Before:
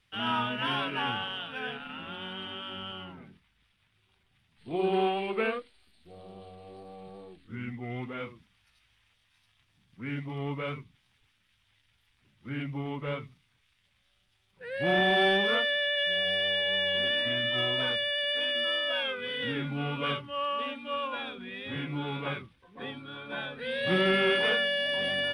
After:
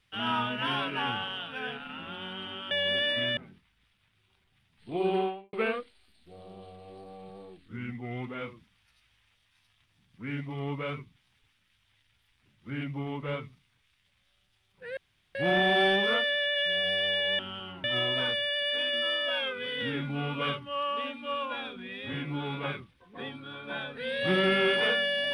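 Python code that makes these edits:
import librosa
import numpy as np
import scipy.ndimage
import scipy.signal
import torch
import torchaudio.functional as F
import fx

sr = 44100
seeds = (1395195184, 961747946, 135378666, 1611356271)

y = fx.studio_fade_out(x, sr, start_s=4.88, length_s=0.44)
y = fx.edit(y, sr, fx.swap(start_s=2.71, length_s=0.45, other_s=16.8, other_length_s=0.66),
    fx.insert_room_tone(at_s=14.76, length_s=0.38), tone=tone)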